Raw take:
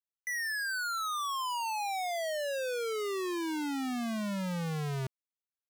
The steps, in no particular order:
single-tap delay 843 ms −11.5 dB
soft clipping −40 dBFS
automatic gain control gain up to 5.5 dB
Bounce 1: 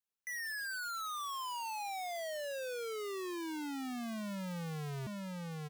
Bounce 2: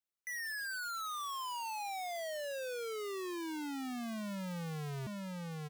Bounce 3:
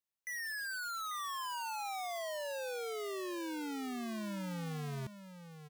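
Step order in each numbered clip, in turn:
automatic gain control, then single-tap delay, then soft clipping
single-tap delay, then automatic gain control, then soft clipping
automatic gain control, then soft clipping, then single-tap delay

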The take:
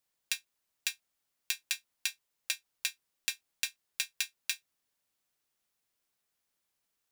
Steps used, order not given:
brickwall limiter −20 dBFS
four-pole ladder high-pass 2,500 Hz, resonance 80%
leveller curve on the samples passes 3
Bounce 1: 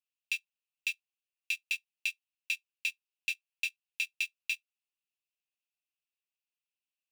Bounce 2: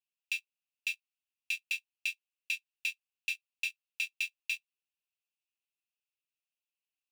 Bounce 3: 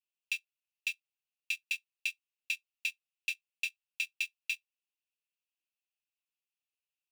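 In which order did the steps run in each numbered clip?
leveller curve on the samples, then four-pole ladder high-pass, then brickwall limiter
brickwall limiter, then leveller curve on the samples, then four-pole ladder high-pass
leveller curve on the samples, then brickwall limiter, then four-pole ladder high-pass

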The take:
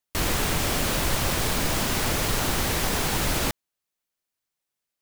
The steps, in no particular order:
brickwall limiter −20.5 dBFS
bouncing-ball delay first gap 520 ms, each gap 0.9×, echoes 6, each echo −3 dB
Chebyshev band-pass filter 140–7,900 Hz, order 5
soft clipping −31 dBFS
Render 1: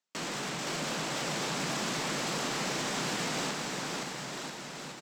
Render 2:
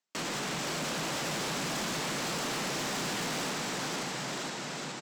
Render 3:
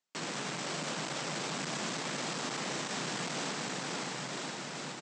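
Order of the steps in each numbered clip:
brickwall limiter, then Chebyshev band-pass filter, then soft clipping, then bouncing-ball delay
Chebyshev band-pass filter, then brickwall limiter, then bouncing-ball delay, then soft clipping
brickwall limiter, then bouncing-ball delay, then soft clipping, then Chebyshev band-pass filter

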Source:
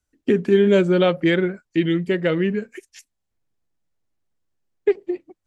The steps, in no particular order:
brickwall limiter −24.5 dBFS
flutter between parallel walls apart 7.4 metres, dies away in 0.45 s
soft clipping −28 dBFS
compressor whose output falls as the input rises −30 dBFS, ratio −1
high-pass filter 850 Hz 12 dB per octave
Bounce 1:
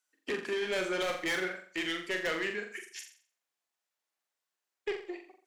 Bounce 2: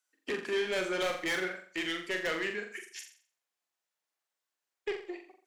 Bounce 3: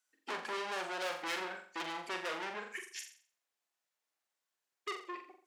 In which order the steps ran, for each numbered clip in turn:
high-pass filter, then soft clipping, then flutter between parallel walls, then compressor whose output falls as the input rises, then brickwall limiter
high-pass filter, then soft clipping, then compressor whose output falls as the input rises, then flutter between parallel walls, then brickwall limiter
soft clipping, then flutter between parallel walls, then brickwall limiter, then high-pass filter, then compressor whose output falls as the input rises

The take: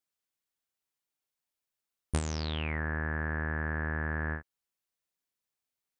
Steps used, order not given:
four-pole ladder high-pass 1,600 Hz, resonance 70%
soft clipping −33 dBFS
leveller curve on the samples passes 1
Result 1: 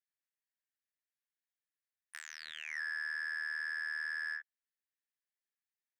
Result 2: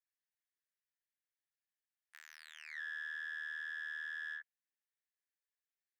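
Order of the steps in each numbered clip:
leveller curve on the samples, then four-pole ladder high-pass, then soft clipping
soft clipping, then leveller curve on the samples, then four-pole ladder high-pass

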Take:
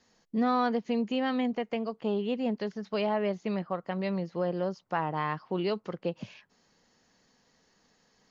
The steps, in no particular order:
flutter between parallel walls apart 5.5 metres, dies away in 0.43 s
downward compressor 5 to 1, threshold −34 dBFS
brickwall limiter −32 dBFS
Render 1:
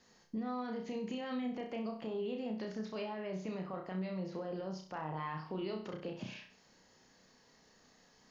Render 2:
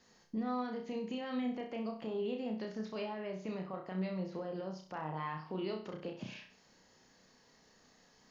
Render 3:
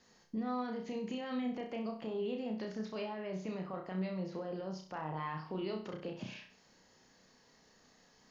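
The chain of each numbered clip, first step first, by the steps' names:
brickwall limiter, then flutter between parallel walls, then downward compressor
downward compressor, then brickwall limiter, then flutter between parallel walls
brickwall limiter, then downward compressor, then flutter between parallel walls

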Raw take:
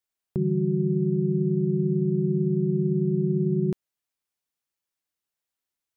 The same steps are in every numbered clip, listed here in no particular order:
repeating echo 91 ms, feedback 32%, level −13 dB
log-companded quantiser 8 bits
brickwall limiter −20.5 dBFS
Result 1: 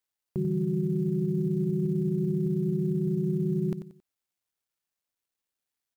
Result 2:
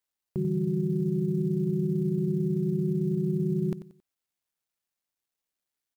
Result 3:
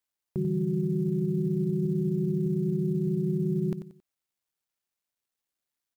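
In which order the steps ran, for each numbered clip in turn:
repeating echo, then brickwall limiter, then log-companded quantiser
brickwall limiter, then repeating echo, then log-companded quantiser
repeating echo, then log-companded quantiser, then brickwall limiter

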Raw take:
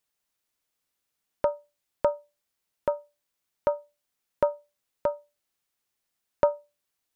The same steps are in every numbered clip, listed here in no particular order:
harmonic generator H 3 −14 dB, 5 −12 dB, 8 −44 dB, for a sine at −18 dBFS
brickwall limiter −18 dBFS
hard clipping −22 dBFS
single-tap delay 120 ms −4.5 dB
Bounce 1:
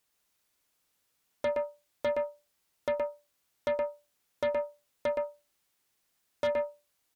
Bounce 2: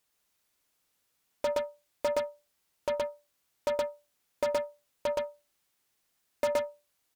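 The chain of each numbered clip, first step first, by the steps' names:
brickwall limiter, then single-tap delay, then harmonic generator, then hard clipping
harmonic generator, then single-tap delay, then brickwall limiter, then hard clipping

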